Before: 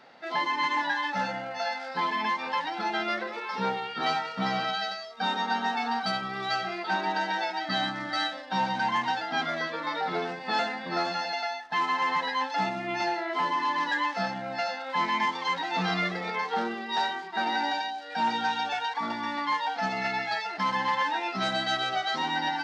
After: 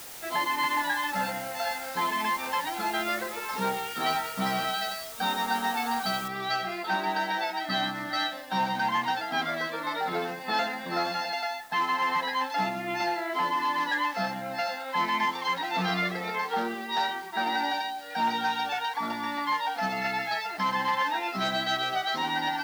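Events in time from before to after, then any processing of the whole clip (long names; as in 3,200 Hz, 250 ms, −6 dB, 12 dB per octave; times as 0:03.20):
0:06.28: noise floor change −43 dB −55 dB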